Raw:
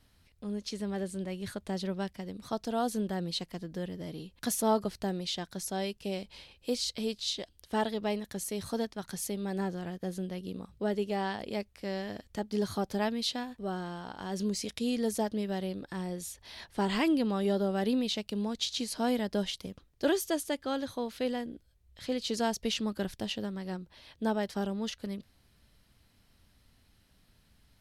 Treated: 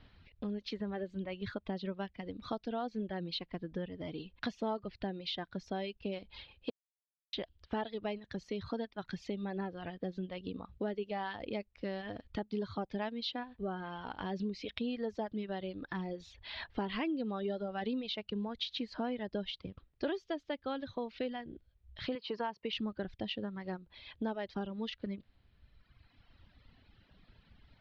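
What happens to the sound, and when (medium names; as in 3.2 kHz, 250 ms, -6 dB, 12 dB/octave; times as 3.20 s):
6.70–7.33 s: mute
22.15–22.73 s: cabinet simulation 190–4700 Hz, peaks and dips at 230 Hz -4 dB, 700 Hz -4 dB, 1 kHz +10 dB, 3.6 kHz -8 dB
whole clip: inverse Chebyshev low-pass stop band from 8.8 kHz, stop band 50 dB; reverb removal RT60 1.8 s; compression 3:1, threshold -44 dBFS; trim +6.5 dB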